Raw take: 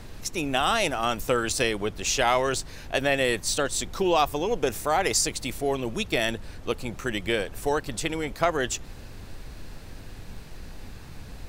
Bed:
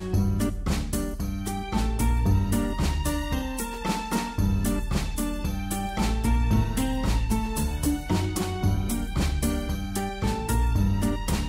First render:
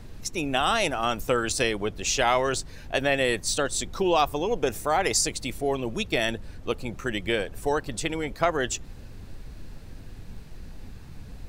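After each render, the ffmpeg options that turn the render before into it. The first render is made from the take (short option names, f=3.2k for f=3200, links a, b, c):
-af "afftdn=nr=6:nf=-42"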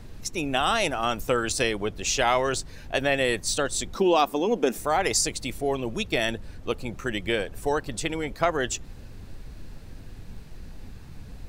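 -filter_complex "[0:a]asettb=1/sr,asplit=3[a][b][c];[a]atrim=end=3.954[d];[b]atrim=start=3.95:end=4.78,asetpts=PTS-STARTPTS,afade=t=in:d=0.004:c=qsin,afade=t=out:st=0.826:d=0.004:c=qsin,lowshelf=f=150:t=q:w=3:g=-14[e];[c]atrim=start=4.776[f];[d][e]acrossfade=d=0.004:c1=hsin:c2=qsin[g];[g][f]acrossfade=d=0.004:c1=qsin:c2=hsin"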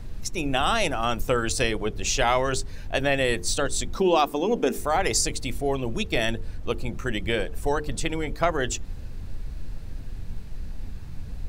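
-af "lowshelf=f=120:g=9.5,bandreject=f=50:t=h:w=6,bandreject=f=100:t=h:w=6,bandreject=f=150:t=h:w=6,bandreject=f=200:t=h:w=6,bandreject=f=250:t=h:w=6,bandreject=f=300:t=h:w=6,bandreject=f=350:t=h:w=6,bandreject=f=400:t=h:w=6,bandreject=f=450:t=h:w=6"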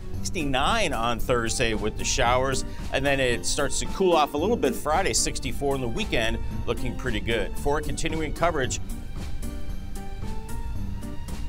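-filter_complex "[1:a]volume=-11.5dB[a];[0:a][a]amix=inputs=2:normalize=0"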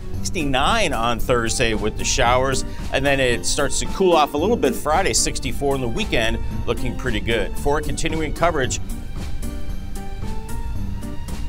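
-af "volume=5dB"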